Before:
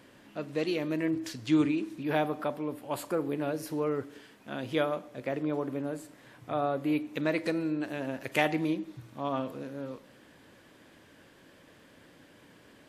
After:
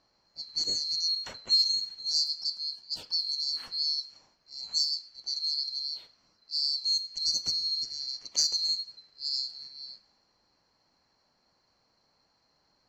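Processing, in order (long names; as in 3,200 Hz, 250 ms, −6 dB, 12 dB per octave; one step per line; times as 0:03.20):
neighbouring bands swapped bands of 4,000 Hz
low-pass that shuts in the quiet parts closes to 1,600 Hz, open at −24.5 dBFS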